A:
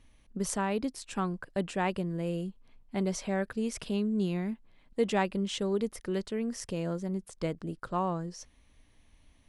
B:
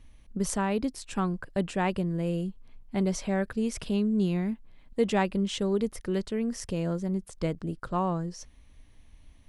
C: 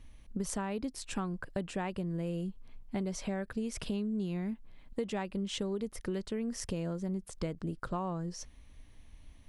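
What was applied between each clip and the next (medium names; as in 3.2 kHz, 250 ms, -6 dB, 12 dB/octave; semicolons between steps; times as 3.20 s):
bass shelf 140 Hz +7.5 dB; trim +1.5 dB
compression, threshold -32 dBFS, peak gain reduction 12.5 dB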